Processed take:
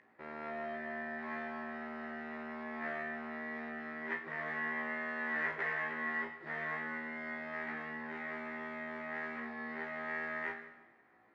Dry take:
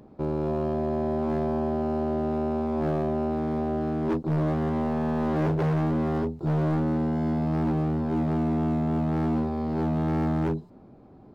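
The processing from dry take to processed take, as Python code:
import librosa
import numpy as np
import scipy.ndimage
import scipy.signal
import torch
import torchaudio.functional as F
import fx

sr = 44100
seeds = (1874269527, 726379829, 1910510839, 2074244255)

y = fx.bandpass_q(x, sr, hz=1900.0, q=12.0)
y = fx.room_flutter(y, sr, wall_m=3.0, rt60_s=0.21)
y = fx.rev_fdn(y, sr, rt60_s=1.2, lf_ratio=0.9, hf_ratio=0.95, size_ms=86.0, drr_db=5.0)
y = y * librosa.db_to_amplitude(13.5)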